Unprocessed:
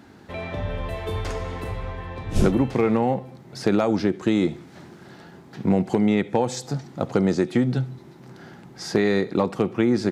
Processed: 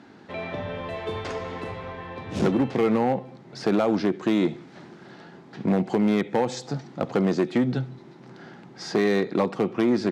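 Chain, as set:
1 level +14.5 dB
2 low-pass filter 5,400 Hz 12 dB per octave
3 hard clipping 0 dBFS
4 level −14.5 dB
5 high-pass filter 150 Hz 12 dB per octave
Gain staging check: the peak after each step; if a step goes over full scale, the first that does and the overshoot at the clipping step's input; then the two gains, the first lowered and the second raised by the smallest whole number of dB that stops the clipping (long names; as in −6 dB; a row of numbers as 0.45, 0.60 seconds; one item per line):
+6.5, +6.5, 0.0, −14.5, −9.5 dBFS
step 1, 6.5 dB
step 1 +7.5 dB, step 4 −7.5 dB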